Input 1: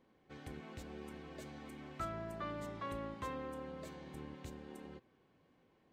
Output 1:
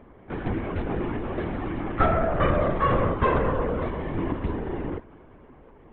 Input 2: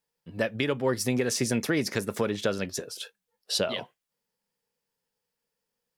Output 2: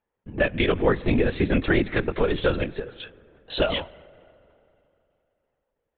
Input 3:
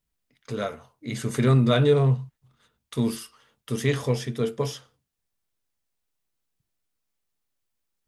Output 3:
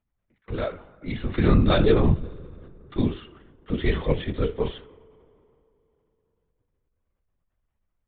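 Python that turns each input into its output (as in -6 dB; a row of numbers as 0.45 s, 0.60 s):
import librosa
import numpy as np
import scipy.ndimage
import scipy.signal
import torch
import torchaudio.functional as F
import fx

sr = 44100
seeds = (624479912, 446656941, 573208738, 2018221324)

y = fx.rev_spring(x, sr, rt60_s=3.0, pass_ms=(44,), chirp_ms=55, drr_db=19.5)
y = fx.env_lowpass(y, sr, base_hz=1600.0, full_db=-21.5)
y = fx.lpc_vocoder(y, sr, seeds[0], excitation='whisper', order=16)
y = y * 10.0 ** (-26 / 20.0) / np.sqrt(np.mean(np.square(y)))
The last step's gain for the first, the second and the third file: +21.0 dB, +5.5 dB, +1.5 dB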